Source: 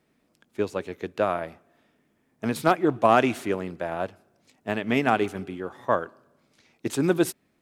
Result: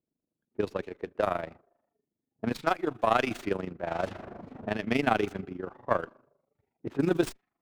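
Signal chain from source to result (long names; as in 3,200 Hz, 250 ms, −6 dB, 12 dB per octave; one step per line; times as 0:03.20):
0:03.87–0:04.71: converter with a step at zero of −33 dBFS
amplitude modulation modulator 25 Hz, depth 65%
low-pass that shuts in the quiet parts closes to 510 Hz, open at −23.5 dBFS
0:02.52–0:03.29: low-shelf EQ 470 Hz −9.5 dB
noise reduction from a noise print of the clip's start 14 dB
0:00.83–0:01.27: bass and treble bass −7 dB, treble +7 dB
windowed peak hold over 3 samples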